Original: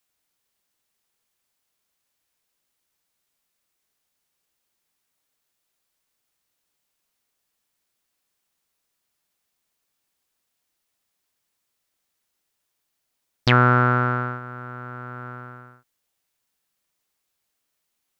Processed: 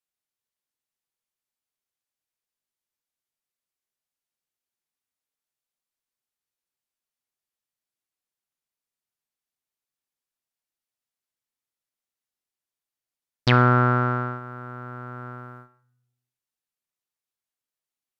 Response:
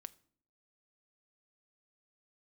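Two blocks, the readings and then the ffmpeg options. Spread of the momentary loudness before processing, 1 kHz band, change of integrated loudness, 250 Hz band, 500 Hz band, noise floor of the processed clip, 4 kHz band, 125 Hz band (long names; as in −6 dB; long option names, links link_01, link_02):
20 LU, −2.0 dB, −1.5 dB, 0.0 dB, −0.5 dB, below −85 dBFS, −2.0 dB, 0.0 dB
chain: -filter_complex "[0:a]agate=range=-12dB:threshold=-42dB:ratio=16:detection=peak[link_01];[1:a]atrim=start_sample=2205,asetrate=28665,aresample=44100[link_02];[link_01][link_02]afir=irnorm=-1:irlink=0,volume=1.5dB"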